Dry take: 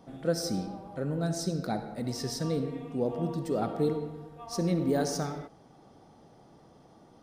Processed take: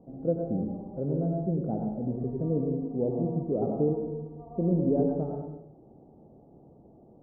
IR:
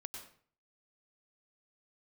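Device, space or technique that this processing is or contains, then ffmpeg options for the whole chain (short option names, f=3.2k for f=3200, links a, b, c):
next room: -filter_complex "[0:a]lowpass=f=640:w=0.5412,lowpass=f=640:w=1.3066[a];[1:a]atrim=start_sample=2205[b];[a][b]afir=irnorm=-1:irlink=0,volume=6.5dB"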